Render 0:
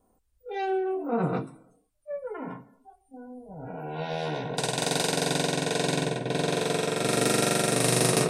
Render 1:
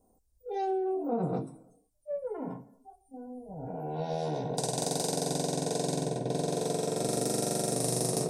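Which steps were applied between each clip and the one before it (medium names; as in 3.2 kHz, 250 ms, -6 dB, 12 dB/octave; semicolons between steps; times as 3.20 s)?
FFT filter 770 Hz 0 dB, 1.3 kHz -12 dB, 2.8 kHz -14 dB, 5.5 kHz +1 dB; compression 4:1, threshold -27 dBFS, peak gain reduction 7.5 dB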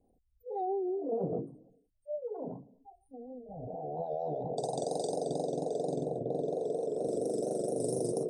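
resonances exaggerated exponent 2; vibrato 4.3 Hz 80 cents; trim -2.5 dB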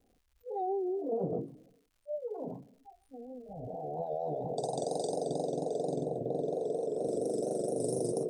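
crackle 230 per s -61 dBFS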